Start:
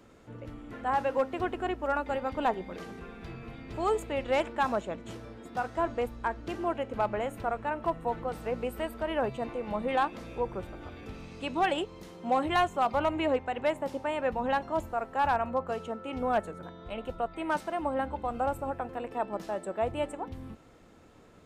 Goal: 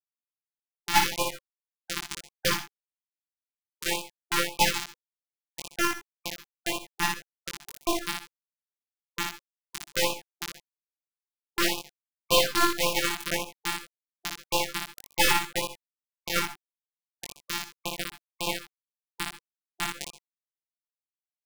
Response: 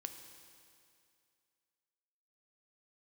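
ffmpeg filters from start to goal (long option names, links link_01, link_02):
-filter_complex "[0:a]highpass=110,equalizer=frequency=310:width_type=q:width=4:gain=3,equalizer=frequency=830:width_type=q:width=4:gain=5,equalizer=frequency=1700:width_type=q:width=4:gain=-9,equalizer=frequency=3000:width_type=q:width=4:gain=7,equalizer=frequency=5700:width_type=q:width=4:gain=-7,lowpass=frequency=8300:width=0.5412,lowpass=frequency=8300:width=1.3066,acrossover=split=310|460|1900[link_01][link_02][link_03][link_04];[link_04]alimiter=level_in=11dB:limit=-24dB:level=0:latency=1:release=297,volume=-11dB[link_05];[link_01][link_02][link_03][link_05]amix=inputs=4:normalize=0,bandreject=frequency=60:width_type=h:width=6,bandreject=frequency=120:width_type=h:width=6,bandreject=frequency=180:width_type=h:width=6,bandreject=frequency=240:width_type=h:width=6,bandreject=frequency=300:width_type=h:width=6,bandreject=frequency=360:width_type=h:width=6,aeval=exprs='0.224*(cos(1*acos(clip(val(0)/0.224,-1,1)))-cos(1*PI/2))+0.0794*(cos(3*acos(clip(val(0)/0.224,-1,1)))-cos(3*PI/2))+0.00891*(cos(8*acos(clip(val(0)/0.224,-1,1)))-cos(8*PI/2))':channel_layout=same,afftfilt=real='hypot(re,im)*cos(PI*b)':imag='0':win_size=1024:overlap=0.75,acrusher=bits=4:mix=0:aa=0.000001,aeval=exprs='0.211*sin(PI/2*3.55*val(0)/0.211)':channel_layout=same,asplit=2[link_06][link_07];[link_07]adelay=21,volume=-2.5dB[link_08];[link_06][link_08]amix=inputs=2:normalize=0,aecho=1:1:58|125|139:0.631|0.141|0.106,afftfilt=real='re*(1-between(b*sr/1024,480*pow(1700/480,0.5+0.5*sin(2*PI*1.8*pts/sr))/1.41,480*pow(1700/480,0.5+0.5*sin(2*PI*1.8*pts/sr))*1.41))':imag='im*(1-between(b*sr/1024,480*pow(1700/480,0.5+0.5*sin(2*PI*1.8*pts/sr))/1.41,480*pow(1700/480,0.5+0.5*sin(2*PI*1.8*pts/sr))*1.41))':win_size=1024:overlap=0.75"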